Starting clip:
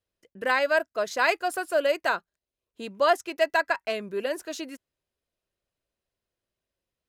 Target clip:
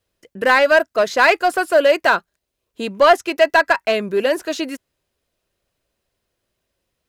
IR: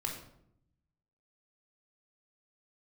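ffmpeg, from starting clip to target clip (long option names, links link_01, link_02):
-filter_complex "[0:a]acrossover=split=4300[link_01][link_02];[link_02]acompressor=threshold=-45dB:ratio=4:attack=1:release=60[link_03];[link_01][link_03]amix=inputs=2:normalize=0,asplit=2[link_04][link_05];[link_05]asoftclip=type=hard:threshold=-25dB,volume=-3.5dB[link_06];[link_04][link_06]amix=inputs=2:normalize=0,volume=7.5dB"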